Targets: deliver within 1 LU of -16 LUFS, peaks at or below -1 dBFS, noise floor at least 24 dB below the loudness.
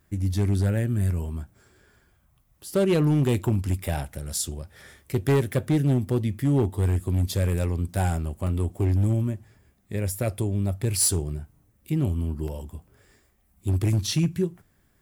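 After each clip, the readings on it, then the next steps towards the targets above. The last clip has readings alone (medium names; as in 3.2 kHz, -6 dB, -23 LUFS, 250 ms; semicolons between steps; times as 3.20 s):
clipped samples 1.2%; clipping level -16.0 dBFS; dropouts 2; longest dropout 1.7 ms; loudness -25.5 LUFS; peak level -16.0 dBFS; loudness target -16.0 LUFS
-> clip repair -16 dBFS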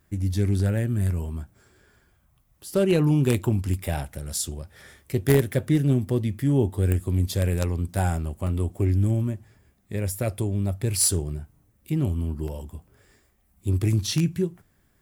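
clipped samples 0.0%; dropouts 2; longest dropout 1.7 ms
-> interpolate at 8.47/12.48 s, 1.7 ms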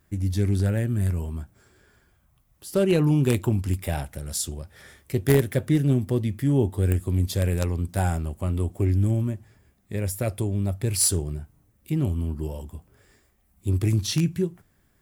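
dropouts 0; loudness -25.0 LUFS; peak level -7.0 dBFS; loudness target -16.0 LUFS
-> trim +9 dB; peak limiter -1 dBFS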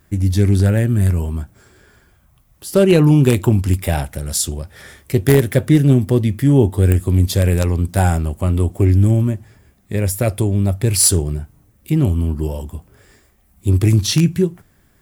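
loudness -16.0 LUFS; peak level -1.0 dBFS; noise floor -56 dBFS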